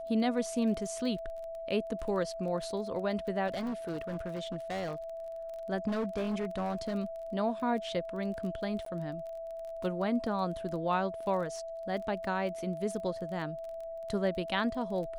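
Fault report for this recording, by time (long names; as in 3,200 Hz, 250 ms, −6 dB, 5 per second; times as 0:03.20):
surface crackle 20 per second −40 dBFS
whistle 660 Hz −38 dBFS
0:03.47–0:04.95: clipping −32 dBFS
0:05.87–0:06.94: clipping −29 dBFS
0:08.85–0:08.86: drop-out 13 ms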